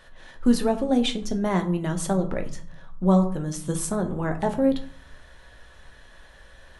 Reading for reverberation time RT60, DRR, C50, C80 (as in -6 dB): 0.50 s, 5.0 dB, 13.0 dB, 17.0 dB